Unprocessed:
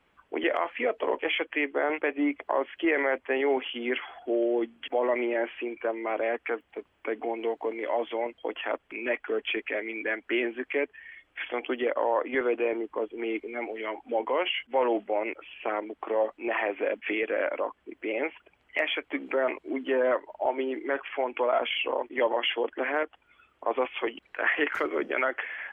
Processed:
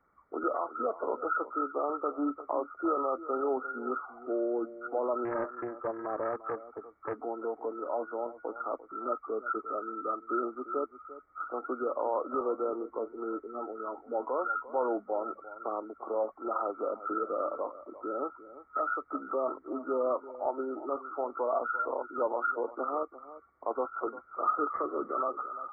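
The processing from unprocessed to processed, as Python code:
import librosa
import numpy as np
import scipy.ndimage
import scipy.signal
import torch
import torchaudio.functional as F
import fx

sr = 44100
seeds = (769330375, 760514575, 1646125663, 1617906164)

y = fx.freq_compress(x, sr, knee_hz=1100.0, ratio=4.0)
y = y + 10.0 ** (-15.5 / 20.0) * np.pad(y, (int(347 * sr / 1000.0), 0))[:len(y)]
y = fx.doppler_dist(y, sr, depth_ms=0.29, at=(5.25, 7.19))
y = y * 10.0 ** (-5.0 / 20.0)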